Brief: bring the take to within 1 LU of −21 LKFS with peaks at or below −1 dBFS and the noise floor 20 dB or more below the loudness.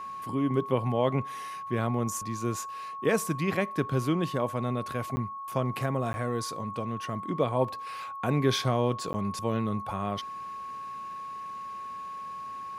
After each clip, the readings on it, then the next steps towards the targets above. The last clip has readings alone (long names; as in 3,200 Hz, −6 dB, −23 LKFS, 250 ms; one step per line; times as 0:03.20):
number of dropouts 3; longest dropout 10 ms; interfering tone 1,100 Hz; level of the tone −36 dBFS; integrated loudness −31.0 LKFS; sample peak −12.0 dBFS; target loudness −21.0 LKFS
→ repair the gap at 0:05.16/0:06.13/0:09.13, 10 ms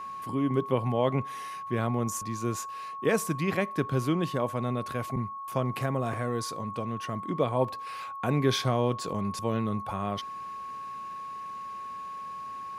number of dropouts 0; interfering tone 1,100 Hz; level of the tone −36 dBFS
→ notch filter 1,100 Hz, Q 30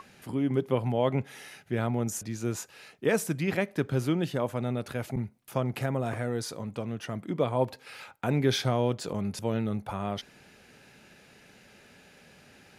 interfering tone none found; integrated loudness −30.5 LKFS; sample peak −12.5 dBFS; target loudness −21.0 LKFS
→ level +9.5 dB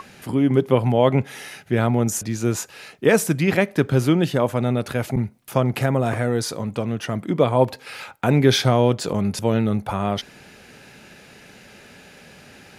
integrated loudness −21.0 LKFS; sample peak −3.0 dBFS; background noise floor −47 dBFS